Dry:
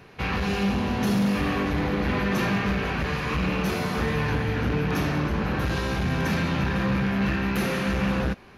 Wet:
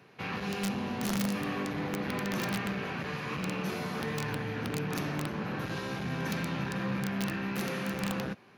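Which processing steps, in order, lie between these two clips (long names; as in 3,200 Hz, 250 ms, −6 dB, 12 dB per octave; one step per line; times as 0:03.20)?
high-pass filter 110 Hz 24 dB per octave
wrap-around overflow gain 15.5 dB
level −8 dB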